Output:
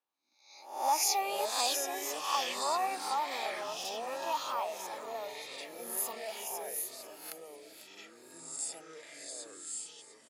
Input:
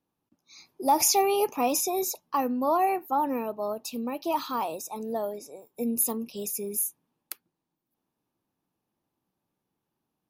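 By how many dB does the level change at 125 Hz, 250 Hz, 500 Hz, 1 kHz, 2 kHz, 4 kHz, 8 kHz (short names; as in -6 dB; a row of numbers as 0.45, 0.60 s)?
under -15 dB, -19.5 dB, -9.5 dB, -5.5 dB, +1.0 dB, +1.5 dB, -4.5 dB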